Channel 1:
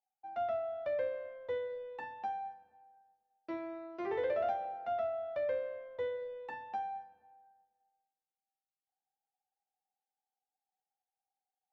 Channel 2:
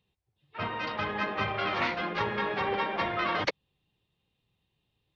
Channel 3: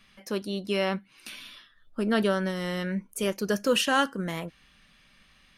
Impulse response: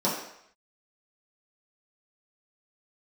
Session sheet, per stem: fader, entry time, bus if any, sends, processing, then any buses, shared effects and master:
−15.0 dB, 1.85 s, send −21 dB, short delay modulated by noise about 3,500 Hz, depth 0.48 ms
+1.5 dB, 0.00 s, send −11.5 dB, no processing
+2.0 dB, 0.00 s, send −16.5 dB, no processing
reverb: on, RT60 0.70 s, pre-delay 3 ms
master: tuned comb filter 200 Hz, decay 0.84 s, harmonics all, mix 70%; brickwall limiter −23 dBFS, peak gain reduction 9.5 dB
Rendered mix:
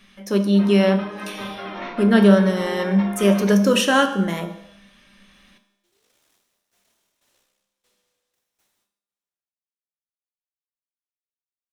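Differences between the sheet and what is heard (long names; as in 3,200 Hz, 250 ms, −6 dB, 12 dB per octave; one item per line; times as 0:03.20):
stem 1 −15.0 dB → −25.0 dB
stem 3 +2.0 dB → +13.5 dB
master: missing brickwall limiter −23 dBFS, peak gain reduction 9.5 dB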